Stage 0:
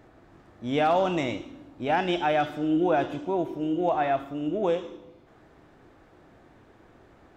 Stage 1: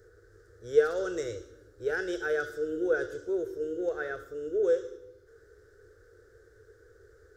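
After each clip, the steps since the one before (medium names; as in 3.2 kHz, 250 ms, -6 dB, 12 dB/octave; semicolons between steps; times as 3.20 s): FFT filter 100 Hz 0 dB, 150 Hz -19 dB, 260 Hz -26 dB, 450 Hz +10 dB, 670 Hz -22 dB, 980 Hz -26 dB, 1.5 kHz +4 dB, 2.5 kHz -23 dB, 5.3 kHz +3 dB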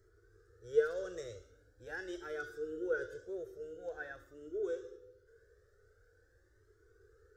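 Shepard-style flanger rising 0.45 Hz; trim -5 dB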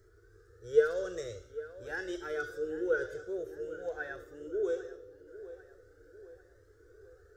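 tape echo 798 ms, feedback 54%, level -14.5 dB, low-pass 2.4 kHz; trim +5 dB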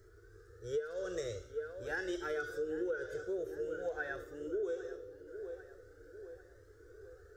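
compression 16:1, threshold -35 dBFS, peak gain reduction 18.5 dB; trim +2 dB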